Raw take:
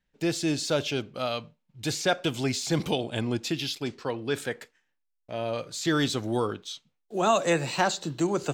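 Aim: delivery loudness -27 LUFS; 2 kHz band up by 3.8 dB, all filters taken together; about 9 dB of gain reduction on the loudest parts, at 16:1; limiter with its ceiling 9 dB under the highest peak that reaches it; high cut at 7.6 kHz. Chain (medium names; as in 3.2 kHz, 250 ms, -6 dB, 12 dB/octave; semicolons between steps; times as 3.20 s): low-pass 7.6 kHz; peaking EQ 2 kHz +5 dB; compression 16:1, threshold -26 dBFS; trim +7.5 dB; peak limiter -16.5 dBFS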